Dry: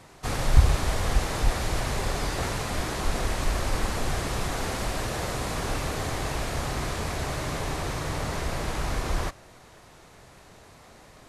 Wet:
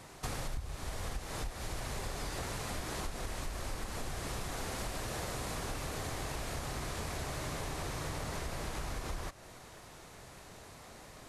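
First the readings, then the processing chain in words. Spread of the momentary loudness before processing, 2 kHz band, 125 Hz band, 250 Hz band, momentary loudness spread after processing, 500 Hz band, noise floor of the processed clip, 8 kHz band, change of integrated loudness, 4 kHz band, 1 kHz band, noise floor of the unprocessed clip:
5 LU, -10.0 dB, -12.5 dB, -10.5 dB, 13 LU, -10.5 dB, -53 dBFS, -7.5 dB, -11.0 dB, -9.0 dB, -10.5 dB, -52 dBFS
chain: high shelf 6500 Hz +5 dB; compressor 16:1, threshold -33 dBFS, peak gain reduction 24 dB; gain -1.5 dB

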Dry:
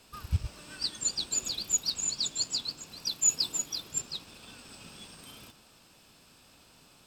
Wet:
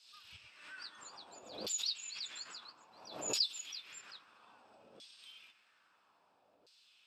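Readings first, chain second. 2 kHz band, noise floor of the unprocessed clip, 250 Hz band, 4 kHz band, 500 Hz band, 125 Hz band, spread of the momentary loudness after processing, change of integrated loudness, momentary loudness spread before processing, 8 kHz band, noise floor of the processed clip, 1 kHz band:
-3.0 dB, -60 dBFS, -8.5 dB, -7.5 dB, +1.0 dB, -27.5 dB, 21 LU, -9.5 dB, 22 LU, -14.5 dB, -72 dBFS, -3.5 dB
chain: flange 0.39 Hz, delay 8.9 ms, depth 1.4 ms, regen -43%; LFO band-pass saw down 0.6 Hz 500–4600 Hz; backwards sustainer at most 68 dB/s; gain +2.5 dB

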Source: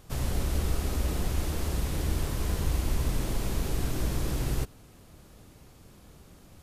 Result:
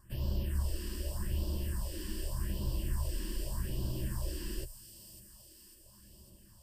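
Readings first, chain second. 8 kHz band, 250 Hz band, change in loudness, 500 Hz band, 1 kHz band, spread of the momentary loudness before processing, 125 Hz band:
-6.5 dB, -7.5 dB, -6.5 dB, -9.0 dB, -12.5 dB, 2 LU, -6.0 dB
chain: ripple EQ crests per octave 1.3, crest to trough 13 dB; phaser stages 4, 0.84 Hz, lowest notch 110–1900 Hz; on a send: thin delay 0.552 s, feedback 63%, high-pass 5500 Hz, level -4 dB; on the sum: gain -8.5 dB

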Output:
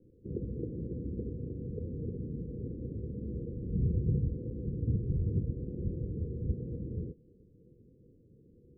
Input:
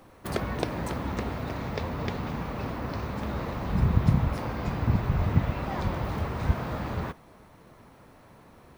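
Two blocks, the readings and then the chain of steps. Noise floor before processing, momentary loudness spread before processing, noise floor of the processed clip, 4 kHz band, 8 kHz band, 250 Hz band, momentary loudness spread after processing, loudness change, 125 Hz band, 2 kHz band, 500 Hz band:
-54 dBFS, 8 LU, -62 dBFS, under -40 dB, n/a, -6.0 dB, 8 LU, -6.5 dB, -5.5 dB, under -40 dB, -8.0 dB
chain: hard clip -19 dBFS, distortion -12 dB; rippled Chebyshev low-pass 500 Hz, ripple 3 dB; gain -3.5 dB

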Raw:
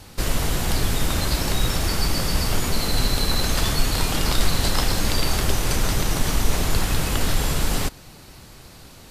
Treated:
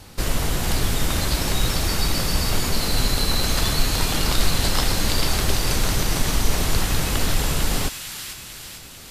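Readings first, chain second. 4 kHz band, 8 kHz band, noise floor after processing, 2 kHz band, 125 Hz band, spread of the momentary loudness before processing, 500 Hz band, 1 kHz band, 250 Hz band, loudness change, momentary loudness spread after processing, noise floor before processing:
+1.5 dB, +1.5 dB, -40 dBFS, +1.0 dB, 0.0 dB, 2 LU, 0.0 dB, 0.0 dB, 0.0 dB, +0.5 dB, 7 LU, -45 dBFS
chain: thin delay 0.448 s, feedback 57%, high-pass 1900 Hz, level -5 dB

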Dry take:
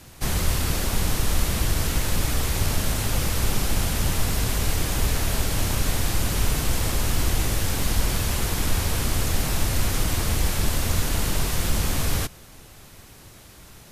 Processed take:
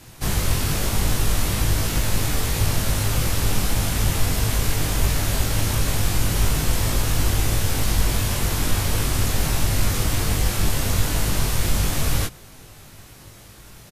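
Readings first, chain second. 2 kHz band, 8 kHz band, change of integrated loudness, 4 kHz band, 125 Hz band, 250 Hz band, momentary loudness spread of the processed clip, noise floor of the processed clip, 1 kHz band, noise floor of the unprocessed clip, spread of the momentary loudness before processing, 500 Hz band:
+2.0 dB, +2.0 dB, +2.5 dB, +2.0 dB, +3.5 dB, +2.0 dB, 1 LU, -45 dBFS, +2.0 dB, -47 dBFS, 1 LU, +2.0 dB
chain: bell 120 Hz +5.5 dB 0.3 oct; doubler 20 ms -3 dB

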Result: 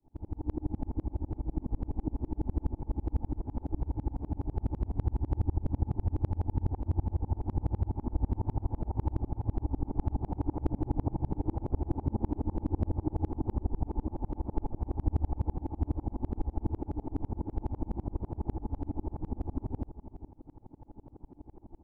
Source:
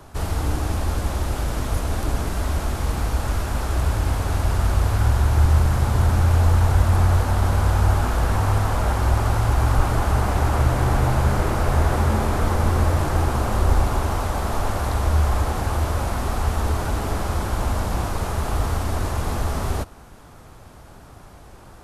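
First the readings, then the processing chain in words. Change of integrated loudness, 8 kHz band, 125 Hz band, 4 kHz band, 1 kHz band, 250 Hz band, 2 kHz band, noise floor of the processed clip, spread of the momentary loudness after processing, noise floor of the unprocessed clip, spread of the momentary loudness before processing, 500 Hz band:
-13.5 dB, under -40 dB, -13.5 dB, under -35 dB, -19.0 dB, -6.5 dB, under -30 dB, -57 dBFS, 6 LU, -44 dBFS, 7 LU, -14.5 dB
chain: low shelf 89 Hz +8.5 dB; limiter -7 dBFS, peak gain reduction 7 dB; AGC; vocal tract filter u; on a send: echo 0.47 s -9 dB; on the sum: dB-ramp tremolo swelling 12 Hz, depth 34 dB

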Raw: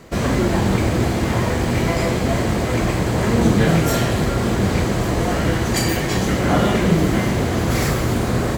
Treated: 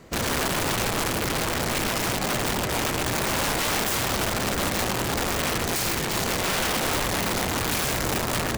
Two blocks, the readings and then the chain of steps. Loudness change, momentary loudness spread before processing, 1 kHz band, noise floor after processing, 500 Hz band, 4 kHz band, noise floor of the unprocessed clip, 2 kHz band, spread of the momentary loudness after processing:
-5.5 dB, 4 LU, -3.0 dB, -27 dBFS, -8.0 dB, +1.5 dB, -22 dBFS, -1.5 dB, 2 LU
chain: wrapped overs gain 14.5 dB; gain -5.5 dB

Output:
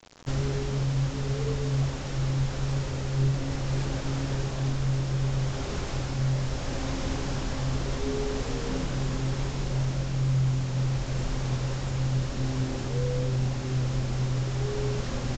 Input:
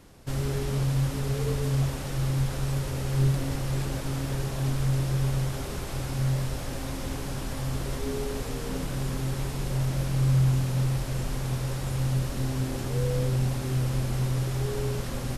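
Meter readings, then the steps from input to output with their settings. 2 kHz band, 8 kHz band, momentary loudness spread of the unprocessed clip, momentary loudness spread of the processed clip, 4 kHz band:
+0.5 dB, -2.5 dB, 7 LU, 4 LU, +1.0 dB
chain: in parallel at +2 dB: vocal rider 0.5 s; on the sum: bit-crush 6-bit; downsampling 16000 Hz; gain -7.5 dB

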